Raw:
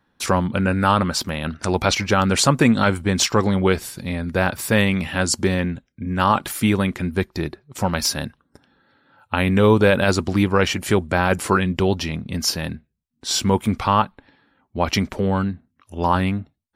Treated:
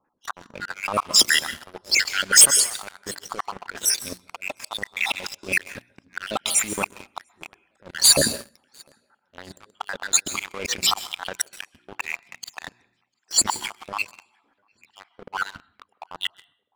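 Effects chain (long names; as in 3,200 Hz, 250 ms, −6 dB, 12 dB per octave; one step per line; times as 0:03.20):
time-frequency cells dropped at random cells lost 66%
compressor whose output falls as the input rises −28 dBFS, ratio −1
mains-hum notches 60/120/180/240/300/360 Hz
volume swells 313 ms
low-pass that shuts in the quiet parts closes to 1,200 Hz, open at −30 dBFS
bass and treble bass −13 dB, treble +11 dB
on a send: tape delay 700 ms, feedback 54%, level −21.5 dB, low-pass 4,700 Hz
on the sum: dense smooth reverb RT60 0.54 s, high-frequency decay 1×, pre-delay 115 ms, DRR 11 dB
leveller curve on the samples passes 3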